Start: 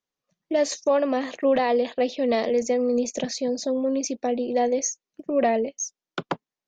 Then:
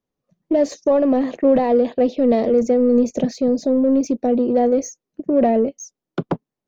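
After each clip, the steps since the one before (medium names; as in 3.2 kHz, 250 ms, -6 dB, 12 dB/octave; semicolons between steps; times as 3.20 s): in parallel at -4 dB: saturation -27.5 dBFS, distortion -7 dB; on the sum: tilt shelf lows +9.5 dB, about 810 Hz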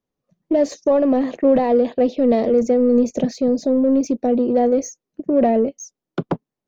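no audible change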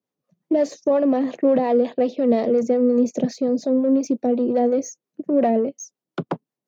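high-pass 120 Hz 24 dB/octave; harmonic tremolo 5.6 Hz, depth 50%, crossover 550 Hz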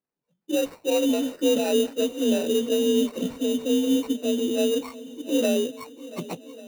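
frequency axis rescaled in octaves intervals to 88%; sample-rate reducer 3.3 kHz, jitter 0%; shuffle delay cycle 1143 ms, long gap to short 1.5:1, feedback 39%, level -18 dB; trim -3 dB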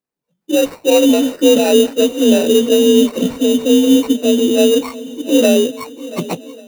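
level rider gain up to 10.5 dB; trim +2 dB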